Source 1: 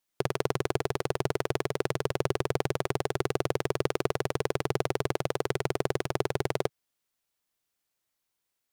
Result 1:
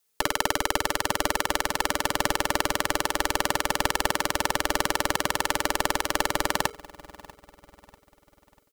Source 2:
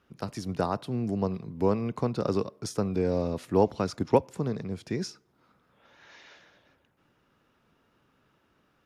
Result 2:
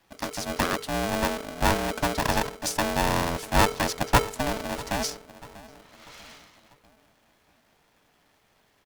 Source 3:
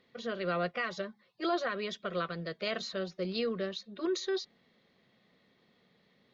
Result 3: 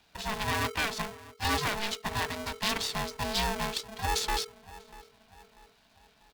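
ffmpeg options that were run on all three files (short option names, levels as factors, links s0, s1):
-filter_complex "[0:a]aeval=exprs='if(lt(val(0),0),0.447*val(0),val(0))':c=same,highshelf=f=3300:g=10,afreqshift=20,asplit=2[s0][s1];[s1]adelay=642,lowpass=f=1000:p=1,volume=0.126,asplit=2[s2][s3];[s3]adelay=642,lowpass=f=1000:p=1,volume=0.48,asplit=2[s4][s5];[s5]adelay=642,lowpass=f=1000:p=1,volume=0.48,asplit=2[s6][s7];[s7]adelay=642,lowpass=f=1000:p=1,volume=0.48[s8];[s0][s2][s4][s6][s8]amix=inputs=5:normalize=0,aeval=exprs='val(0)*sgn(sin(2*PI*440*n/s))':c=same,volume=1.58"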